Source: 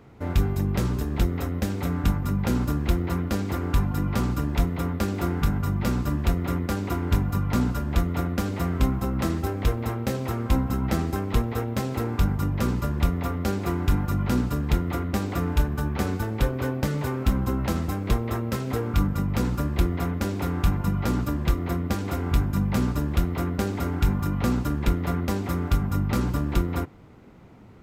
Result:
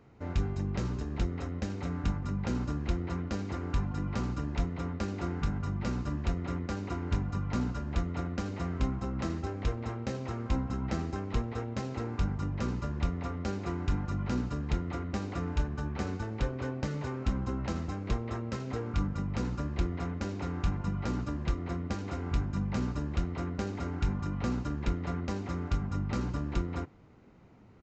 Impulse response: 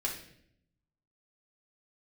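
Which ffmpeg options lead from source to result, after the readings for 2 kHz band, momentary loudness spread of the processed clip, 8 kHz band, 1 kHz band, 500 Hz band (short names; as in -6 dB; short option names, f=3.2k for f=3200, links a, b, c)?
-8.0 dB, 3 LU, -11.0 dB, -8.0 dB, -8.0 dB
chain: -af "bandreject=f=3.4k:w=18,aresample=16000,aresample=44100,volume=-8dB"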